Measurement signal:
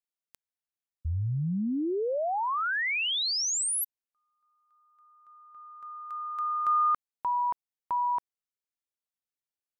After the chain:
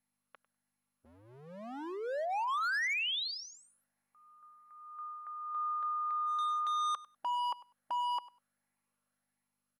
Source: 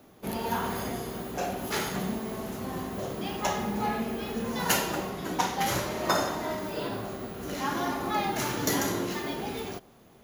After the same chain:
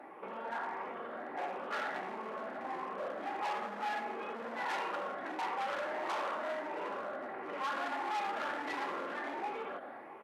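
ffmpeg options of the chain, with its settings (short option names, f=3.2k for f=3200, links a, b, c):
-filter_complex "[0:a]afftfilt=real='re*pow(10,7/40*sin(2*PI*(0.76*log(max(b,1)*sr/1024/100)/log(2)-(1.5)*(pts-256)/sr)))':imag='im*pow(10,7/40*sin(2*PI*(0.76*log(max(b,1)*sr/1024/100)/log(2)-(1.5)*(pts-256)/sr)))':win_size=1024:overlap=0.75,aecho=1:1:3.6:0.3,dynaudnorm=f=900:g=3:m=6.5dB,lowpass=f=2k:w=0.5412,lowpass=f=2k:w=1.3066,aeval=exprs='0.501*(cos(1*acos(clip(val(0)/0.501,-1,1)))-cos(1*PI/2))+0.0794*(cos(5*acos(clip(val(0)/0.501,-1,1)))-cos(5*PI/2))':c=same,asplit=2[a][b];[b]aeval=exprs='0.0944*(abs(mod(val(0)/0.0944+3,4)-2)-1)':c=same,volume=-3dB[c];[a][c]amix=inputs=2:normalize=0,acompressor=threshold=-34dB:ratio=3:attack=0.76:release=39:knee=6:detection=rms,aeval=exprs='val(0)+0.000562*(sin(2*PI*50*n/s)+sin(2*PI*2*50*n/s)/2+sin(2*PI*3*50*n/s)/3+sin(2*PI*4*50*n/s)/4+sin(2*PI*5*50*n/s)/5)':c=same,alimiter=level_in=6.5dB:limit=-24dB:level=0:latency=1:release=14,volume=-6.5dB,highpass=570,asplit=2[d][e];[e]aecho=0:1:99|198:0.112|0.0168[f];[d][f]amix=inputs=2:normalize=0" -ar 44100 -c:a mp2 -b:a 192k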